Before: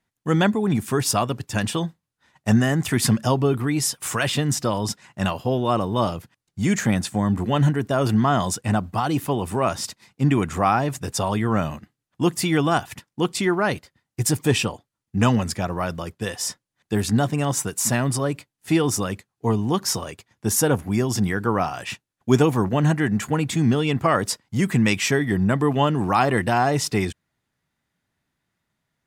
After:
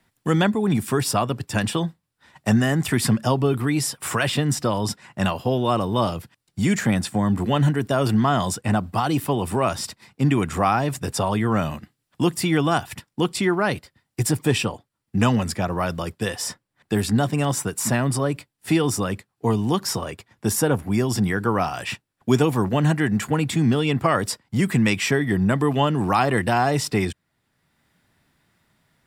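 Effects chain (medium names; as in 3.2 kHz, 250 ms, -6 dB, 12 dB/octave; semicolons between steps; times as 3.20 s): band-stop 6.4 kHz, Q 9.1; three bands compressed up and down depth 40%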